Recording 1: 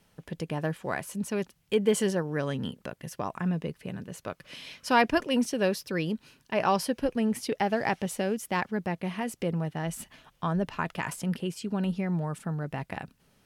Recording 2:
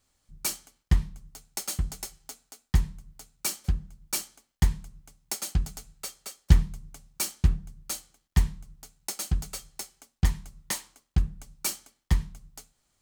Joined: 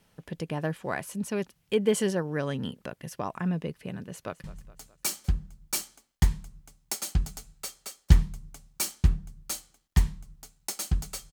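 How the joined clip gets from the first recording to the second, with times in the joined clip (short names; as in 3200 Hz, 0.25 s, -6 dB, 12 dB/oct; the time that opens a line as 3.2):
recording 1
4.09–4.44 echo throw 0.21 s, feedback 55%, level -17 dB
4.44 switch to recording 2 from 2.84 s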